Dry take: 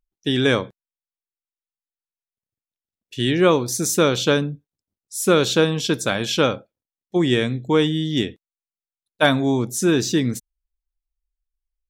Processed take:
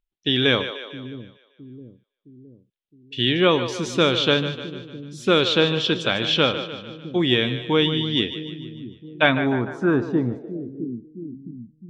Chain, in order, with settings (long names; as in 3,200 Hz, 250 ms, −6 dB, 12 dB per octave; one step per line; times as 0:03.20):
echo with a time of its own for lows and highs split 340 Hz, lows 664 ms, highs 150 ms, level −11 dB
low-pass filter sweep 3,300 Hz → 190 Hz, 0:09.07–0:11.60
level −2.5 dB